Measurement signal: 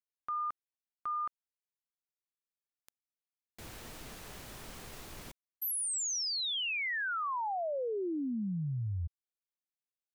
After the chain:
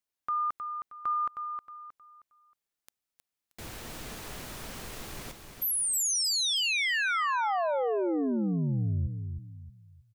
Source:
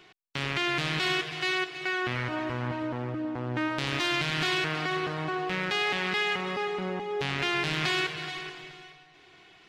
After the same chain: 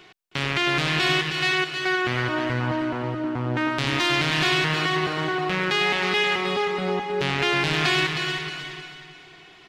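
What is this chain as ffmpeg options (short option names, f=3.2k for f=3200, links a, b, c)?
-af "aecho=1:1:314|628|942|1256:0.447|0.152|0.0516|0.0176,volume=5.5dB"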